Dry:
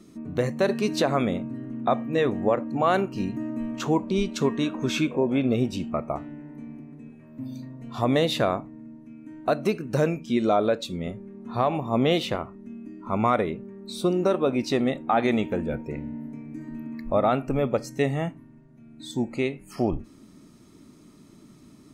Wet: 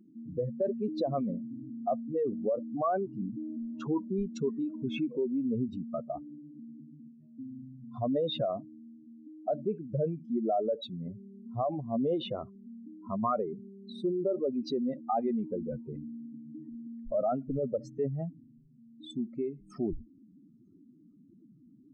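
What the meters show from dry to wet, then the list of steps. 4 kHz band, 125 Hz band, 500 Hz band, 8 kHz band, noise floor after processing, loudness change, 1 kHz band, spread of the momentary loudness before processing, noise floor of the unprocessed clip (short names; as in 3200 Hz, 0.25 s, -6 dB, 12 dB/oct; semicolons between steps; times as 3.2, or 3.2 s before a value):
-11.5 dB, -9.0 dB, -7.0 dB, under -20 dB, -59 dBFS, -7.5 dB, -8.5 dB, 16 LU, -52 dBFS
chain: spectral contrast raised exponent 2.7; gain -7 dB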